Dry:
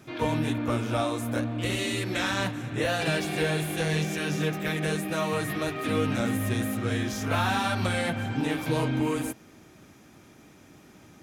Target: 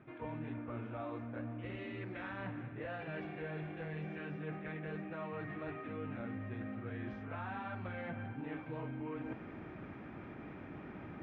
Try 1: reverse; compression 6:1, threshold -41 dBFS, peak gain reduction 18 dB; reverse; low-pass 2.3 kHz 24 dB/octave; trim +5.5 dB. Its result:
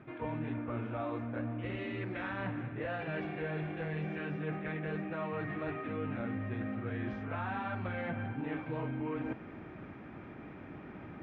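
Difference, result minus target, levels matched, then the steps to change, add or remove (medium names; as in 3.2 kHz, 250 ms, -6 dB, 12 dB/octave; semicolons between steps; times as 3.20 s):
compression: peak gain reduction -5.5 dB
change: compression 6:1, threshold -47.5 dBFS, peak gain reduction 23.5 dB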